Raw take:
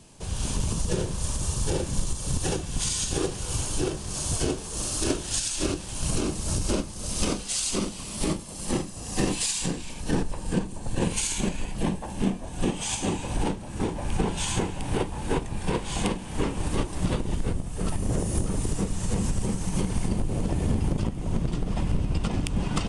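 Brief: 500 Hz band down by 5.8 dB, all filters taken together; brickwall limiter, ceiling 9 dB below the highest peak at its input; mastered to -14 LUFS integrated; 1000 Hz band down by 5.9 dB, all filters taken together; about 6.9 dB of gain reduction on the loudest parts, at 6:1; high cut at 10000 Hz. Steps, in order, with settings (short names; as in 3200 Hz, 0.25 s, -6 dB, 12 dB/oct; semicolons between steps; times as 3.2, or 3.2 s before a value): LPF 10000 Hz; bell 500 Hz -7 dB; bell 1000 Hz -5 dB; compressor 6:1, threshold -28 dBFS; gain +23 dB; limiter -3.5 dBFS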